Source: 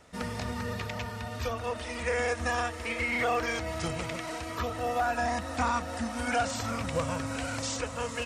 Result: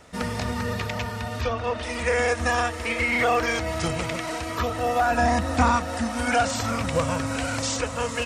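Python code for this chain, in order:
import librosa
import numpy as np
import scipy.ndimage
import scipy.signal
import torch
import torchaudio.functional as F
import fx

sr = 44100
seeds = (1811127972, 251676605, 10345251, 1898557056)

y = fx.lowpass(x, sr, hz=4800.0, slope=12, at=(1.41, 1.83))
y = fx.low_shelf(y, sr, hz=430.0, db=6.0, at=(5.11, 5.76))
y = y * librosa.db_to_amplitude(6.5)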